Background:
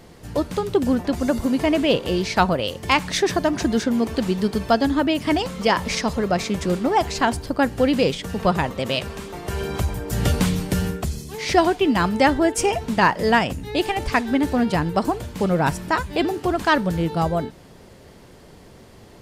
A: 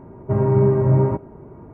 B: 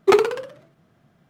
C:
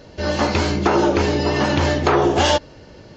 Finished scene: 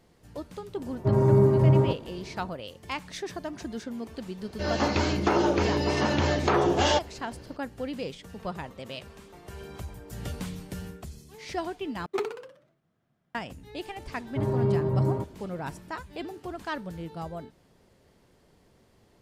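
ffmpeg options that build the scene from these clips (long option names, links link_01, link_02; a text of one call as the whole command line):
ffmpeg -i bed.wav -i cue0.wav -i cue1.wav -i cue2.wav -filter_complex "[1:a]asplit=2[link_01][link_02];[0:a]volume=-15.5dB,asplit=2[link_03][link_04];[link_03]atrim=end=12.064[link_05];[2:a]atrim=end=1.29,asetpts=PTS-STARTPTS,volume=-15dB[link_06];[link_04]atrim=start=13.346[link_07];[link_01]atrim=end=1.73,asetpts=PTS-STARTPTS,volume=-3.5dB,afade=type=in:duration=0.004:curve=hsin,afade=type=out:start_time=1.726:duration=0.004:curve=hsin,adelay=760[link_08];[3:a]atrim=end=3.16,asetpts=PTS-STARTPTS,volume=-7dB,afade=type=in:duration=0.004:curve=hsin,afade=type=out:start_time=3.156:duration=0.004:curve=hsin,adelay=194481S[link_09];[link_02]atrim=end=1.73,asetpts=PTS-STARTPTS,volume=-9dB,afade=type=in:duration=0.004:curve=hsin,afade=type=out:start_time=1.726:duration=0.004:curve=hsin,adelay=14070[link_10];[link_05][link_06]acrossfade=duration=0.004:curve1=hsin:curve2=hsin[link_11];[link_11][link_07]acrossfade=duration=0.004:curve1=hsin:curve2=hsin[link_12];[link_12][link_08][link_09][link_10]amix=inputs=4:normalize=0" out.wav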